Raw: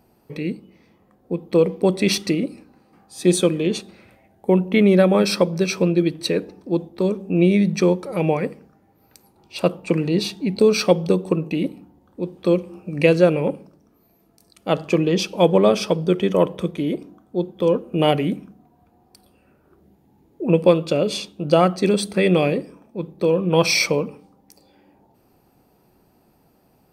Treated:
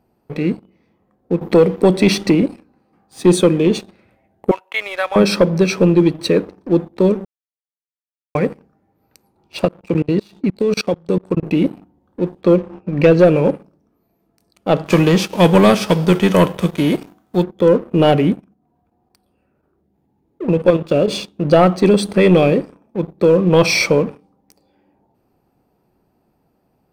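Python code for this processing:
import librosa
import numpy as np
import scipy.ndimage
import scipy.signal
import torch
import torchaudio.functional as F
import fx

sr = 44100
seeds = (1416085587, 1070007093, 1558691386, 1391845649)

y = fx.band_squash(x, sr, depth_pct=40, at=(1.41, 2.42))
y = fx.highpass(y, sr, hz=840.0, slope=24, at=(4.51, 5.16))
y = fx.level_steps(y, sr, step_db=22, at=(9.65, 11.43))
y = fx.air_absorb(y, sr, metres=120.0, at=(12.41, 13.19))
y = fx.envelope_flatten(y, sr, power=0.6, at=(14.85, 17.42), fade=0.02)
y = fx.level_steps(y, sr, step_db=10, at=(18.32, 21.08))
y = fx.edit(y, sr, fx.silence(start_s=7.25, length_s=1.1), tone=tone)
y = fx.leveller(y, sr, passes=2)
y = fx.high_shelf(y, sr, hz=3000.0, db=-8.0)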